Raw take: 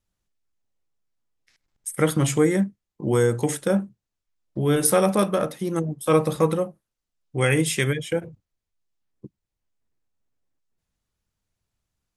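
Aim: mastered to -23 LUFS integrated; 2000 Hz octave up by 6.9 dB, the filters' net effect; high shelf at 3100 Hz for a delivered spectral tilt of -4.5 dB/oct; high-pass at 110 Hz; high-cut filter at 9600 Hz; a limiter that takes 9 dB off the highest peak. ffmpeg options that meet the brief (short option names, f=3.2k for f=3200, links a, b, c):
-af "highpass=110,lowpass=9.6k,equalizer=f=2k:t=o:g=7,highshelf=f=3.1k:g=3.5,volume=1.5dB,alimiter=limit=-10.5dB:level=0:latency=1"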